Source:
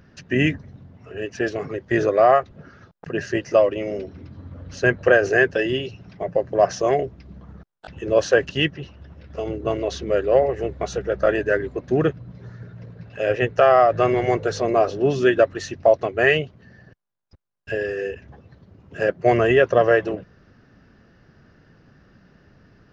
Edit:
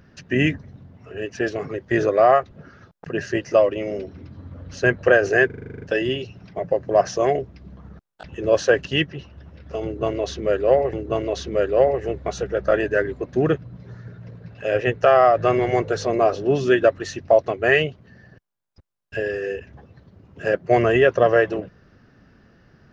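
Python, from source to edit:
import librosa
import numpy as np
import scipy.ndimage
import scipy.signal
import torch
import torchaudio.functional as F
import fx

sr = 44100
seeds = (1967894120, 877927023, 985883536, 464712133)

y = fx.edit(x, sr, fx.stutter(start_s=5.46, slice_s=0.04, count=10),
    fx.repeat(start_s=9.48, length_s=1.09, count=2), tone=tone)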